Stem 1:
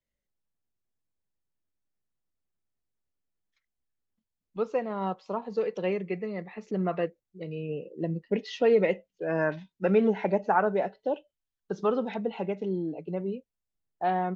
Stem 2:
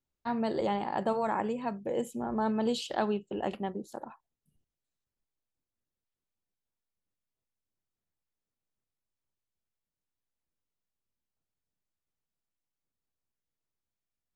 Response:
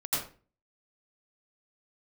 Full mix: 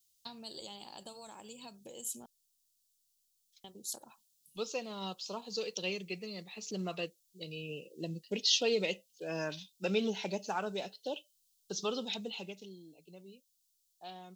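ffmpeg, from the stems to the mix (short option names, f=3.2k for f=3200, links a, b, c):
-filter_complex "[0:a]adynamicequalizer=threshold=0.0112:dfrequency=670:dqfactor=0.83:tfrequency=670:tqfactor=0.83:attack=5:release=100:ratio=0.375:range=2.5:mode=cutabove:tftype=bell,volume=-9dB,afade=t=out:st=12.23:d=0.53:silence=0.251189[a];[1:a]acompressor=threshold=-39dB:ratio=8,volume=-9dB,asplit=3[b][c][d];[b]atrim=end=2.26,asetpts=PTS-STARTPTS,afade=t=out:st=2.256:d=0.004:c=hsin[e];[c]atrim=start=2.26:end=3.64,asetpts=PTS-STARTPTS,volume=0[f];[d]atrim=start=3.64,asetpts=PTS-STARTPTS,afade=t=in:d=0.004:c=hsin[g];[e][f][g]concat=n=3:v=0:a=1[h];[a][h]amix=inputs=2:normalize=0,aexciter=amount=14.6:drive=7.2:freq=3k"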